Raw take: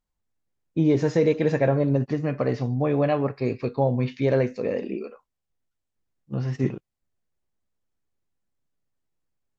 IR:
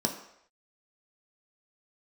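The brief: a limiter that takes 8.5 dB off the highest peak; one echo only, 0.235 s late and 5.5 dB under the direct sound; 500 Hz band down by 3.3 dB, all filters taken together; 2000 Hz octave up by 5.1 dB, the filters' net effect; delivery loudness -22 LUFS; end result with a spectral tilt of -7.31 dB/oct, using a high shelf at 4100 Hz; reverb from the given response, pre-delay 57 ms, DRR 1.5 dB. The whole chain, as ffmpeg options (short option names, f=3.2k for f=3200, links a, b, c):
-filter_complex "[0:a]equalizer=f=500:t=o:g=-4,equalizer=f=2k:t=o:g=7.5,highshelf=f=4.1k:g=-6,alimiter=limit=-19dB:level=0:latency=1,aecho=1:1:235:0.531,asplit=2[a][b];[1:a]atrim=start_sample=2205,adelay=57[c];[b][c]afir=irnorm=-1:irlink=0,volume=-8.5dB[d];[a][d]amix=inputs=2:normalize=0,volume=0.5dB"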